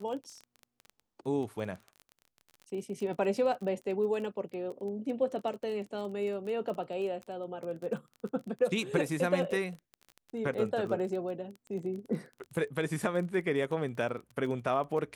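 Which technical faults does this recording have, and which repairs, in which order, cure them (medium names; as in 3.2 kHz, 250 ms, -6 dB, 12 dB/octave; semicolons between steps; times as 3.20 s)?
crackle 23 per s -38 dBFS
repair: de-click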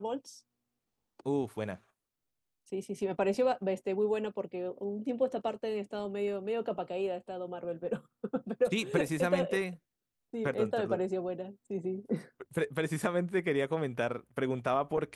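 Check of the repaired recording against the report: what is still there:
nothing left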